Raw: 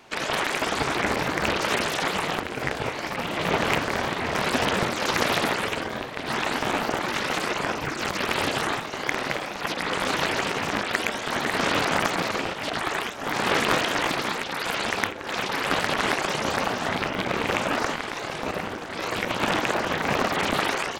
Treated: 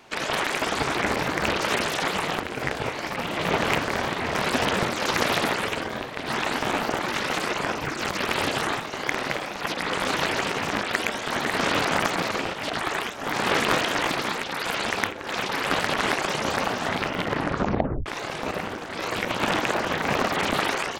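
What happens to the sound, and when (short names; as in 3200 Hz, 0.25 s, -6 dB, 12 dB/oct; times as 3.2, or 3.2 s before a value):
17.15 tape stop 0.91 s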